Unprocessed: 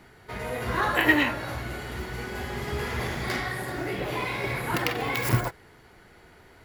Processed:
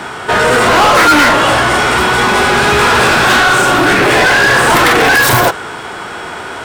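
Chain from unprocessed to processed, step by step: formant shift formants -5 st; overdrive pedal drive 33 dB, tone 5.9 kHz, clips at -8 dBFS; trim +7 dB

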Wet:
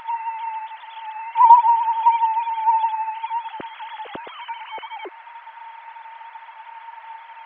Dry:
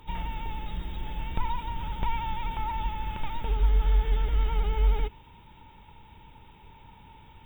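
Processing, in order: formants replaced by sine waves; in parallel at -2 dB: upward compressor, threshold -26 dBFS; on the sum: band noise 700–2200 Hz -44 dBFS; 1.35–2.03 s: resonant low shelf 600 Hz -12.5 dB, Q 3; trim -3.5 dB

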